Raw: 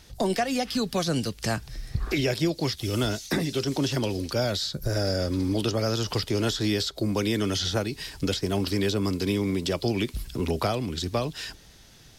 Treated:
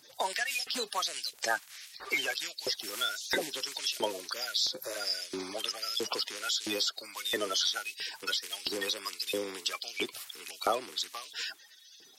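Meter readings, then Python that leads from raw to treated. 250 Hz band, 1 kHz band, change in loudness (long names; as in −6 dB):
−18.5 dB, −3.5 dB, −5.5 dB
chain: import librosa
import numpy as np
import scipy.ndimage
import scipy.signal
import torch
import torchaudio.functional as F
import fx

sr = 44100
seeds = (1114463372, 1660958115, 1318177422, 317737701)

y = fx.spec_quant(x, sr, step_db=30)
y = fx.filter_lfo_highpass(y, sr, shape='saw_up', hz=1.5, low_hz=490.0, high_hz=3500.0, q=1.1)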